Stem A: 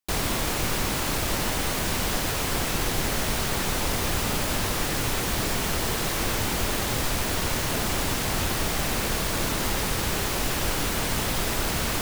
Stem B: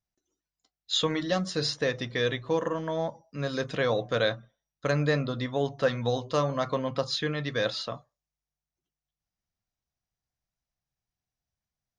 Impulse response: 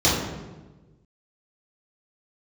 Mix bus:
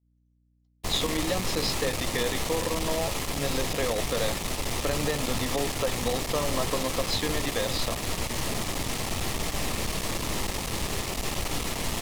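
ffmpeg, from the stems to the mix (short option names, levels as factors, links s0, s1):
-filter_complex "[0:a]lowpass=12000,aeval=exprs='(tanh(31.6*val(0)+0.8)-tanh(0.8))/31.6':c=same,adelay=750,volume=1.41[s0];[1:a]highpass=200,acompressor=threshold=0.0447:ratio=6,volume=1.26[s1];[s0][s1]amix=inputs=2:normalize=0,equalizer=f=1500:w=6.9:g=-10.5,aeval=exprs='val(0)+0.00708*(sin(2*PI*60*n/s)+sin(2*PI*2*60*n/s)/2+sin(2*PI*3*60*n/s)/3+sin(2*PI*4*60*n/s)/4+sin(2*PI*5*60*n/s)/5)':c=same,agate=range=0.0224:threshold=0.0316:ratio=3:detection=peak"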